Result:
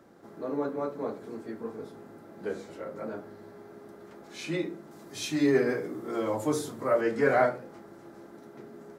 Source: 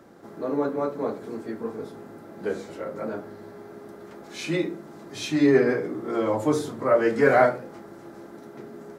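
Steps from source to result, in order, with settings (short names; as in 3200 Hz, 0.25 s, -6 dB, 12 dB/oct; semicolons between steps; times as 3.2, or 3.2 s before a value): 4.91–7.01 high shelf 5900 Hz +10 dB; gain -5.5 dB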